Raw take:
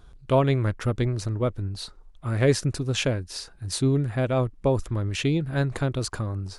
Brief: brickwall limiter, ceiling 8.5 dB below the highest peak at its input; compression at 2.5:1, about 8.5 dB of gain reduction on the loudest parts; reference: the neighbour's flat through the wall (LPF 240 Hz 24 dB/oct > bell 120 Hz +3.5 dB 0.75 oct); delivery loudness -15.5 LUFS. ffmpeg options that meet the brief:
-af "acompressor=threshold=-28dB:ratio=2.5,alimiter=limit=-24dB:level=0:latency=1,lowpass=f=240:w=0.5412,lowpass=f=240:w=1.3066,equalizer=f=120:t=o:w=0.75:g=3.5,volume=17.5dB"

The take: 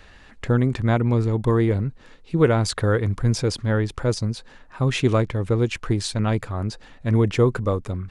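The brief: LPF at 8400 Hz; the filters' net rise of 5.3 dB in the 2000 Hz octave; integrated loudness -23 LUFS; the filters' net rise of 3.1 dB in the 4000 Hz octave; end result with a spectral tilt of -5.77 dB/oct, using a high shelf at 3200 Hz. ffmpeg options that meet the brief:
-af "lowpass=8.4k,equalizer=f=2k:t=o:g=7.5,highshelf=f=3.2k:g=-6,equalizer=f=4k:t=o:g=6.5,volume=-1dB"

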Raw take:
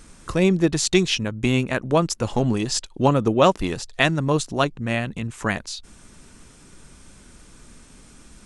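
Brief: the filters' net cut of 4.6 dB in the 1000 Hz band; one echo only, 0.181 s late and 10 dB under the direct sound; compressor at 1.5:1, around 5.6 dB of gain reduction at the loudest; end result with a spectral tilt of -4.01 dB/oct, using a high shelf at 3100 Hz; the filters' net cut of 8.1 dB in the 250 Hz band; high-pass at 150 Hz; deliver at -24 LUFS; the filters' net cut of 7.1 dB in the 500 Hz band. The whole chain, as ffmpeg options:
-af "highpass=150,equalizer=f=250:t=o:g=-8.5,equalizer=f=500:t=o:g=-5.5,equalizer=f=1k:t=o:g=-3,highshelf=f=3.1k:g=-5,acompressor=threshold=-32dB:ratio=1.5,aecho=1:1:181:0.316,volume=7dB"

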